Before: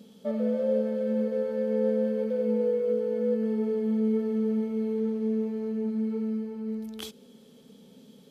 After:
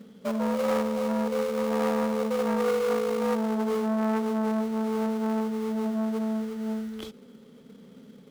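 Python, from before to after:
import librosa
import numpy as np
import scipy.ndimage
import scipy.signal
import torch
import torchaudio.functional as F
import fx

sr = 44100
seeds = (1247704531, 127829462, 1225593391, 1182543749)

p1 = fx.high_shelf(x, sr, hz=4100.0, db=-10.0)
p2 = fx.sample_hold(p1, sr, seeds[0], rate_hz=1700.0, jitter_pct=20)
p3 = p1 + (p2 * 10.0 ** (-5.0 / 20.0))
y = fx.transformer_sat(p3, sr, knee_hz=850.0)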